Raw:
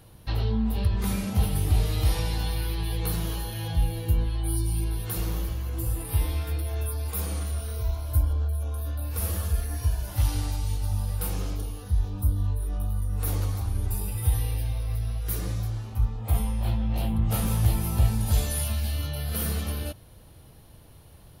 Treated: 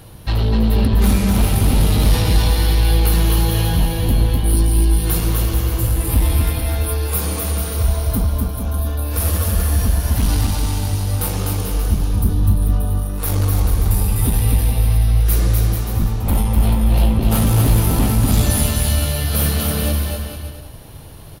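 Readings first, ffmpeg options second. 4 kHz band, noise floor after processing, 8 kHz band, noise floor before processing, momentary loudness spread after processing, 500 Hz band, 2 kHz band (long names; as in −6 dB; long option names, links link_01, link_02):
+12.0 dB, −34 dBFS, +12.0 dB, −50 dBFS, 5 LU, +12.0 dB, +12.0 dB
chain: -af "aeval=exprs='0.335*sin(PI/2*3.16*val(0)/0.335)':channel_layout=same,aecho=1:1:250|437.5|578.1|683.6|762.7:0.631|0.398|0.251|0.158|0.1,volume=-2.5dB"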